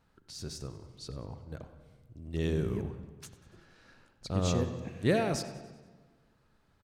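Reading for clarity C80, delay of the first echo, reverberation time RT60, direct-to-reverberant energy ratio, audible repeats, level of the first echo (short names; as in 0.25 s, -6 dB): 10.5 dB, 95 ms, 1.3 s, 9.0 dB, 4, -17.5 dB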